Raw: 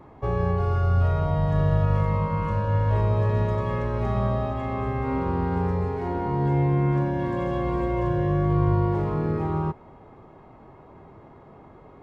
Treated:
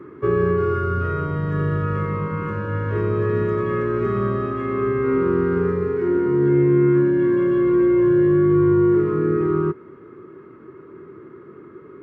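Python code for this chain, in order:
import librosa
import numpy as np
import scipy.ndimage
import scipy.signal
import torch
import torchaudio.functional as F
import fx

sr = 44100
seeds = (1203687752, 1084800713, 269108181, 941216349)

y = scipy.signal.sosfilt(scipy.signal.butter(2, 150.0, 'highpass', fs=sr, output='sos'), x)
y = fx.rider(y, sr, range_db=10, speed_s=2.0)
y = fx.curve_eq(y, sr, hz=(260.0, 370.0, 760.0, 1300.0, 4100.0), db=(0, 11, -23, 6, -11))
y = y * librosa.db_to_amplitude(4.0)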